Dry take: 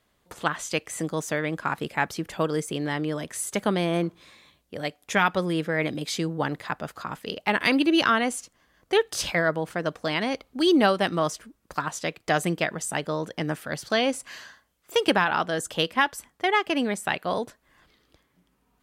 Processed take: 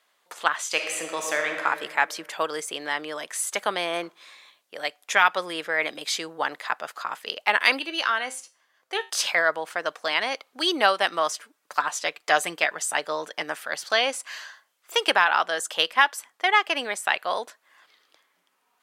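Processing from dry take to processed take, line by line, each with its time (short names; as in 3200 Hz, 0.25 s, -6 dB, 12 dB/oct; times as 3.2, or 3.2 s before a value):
0.66–1.63 reverb throw, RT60 1.9 s, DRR 2.5 dB
7.79–9.1 resonator 130 Hz, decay 0.31 s
11.32–13.43 comb 6.8 ms, depth 41%
whole clip: HPF 750 Hz 12 dB/oct; high shelf 11000 Hz -4.5 dB; gain +4.5 dB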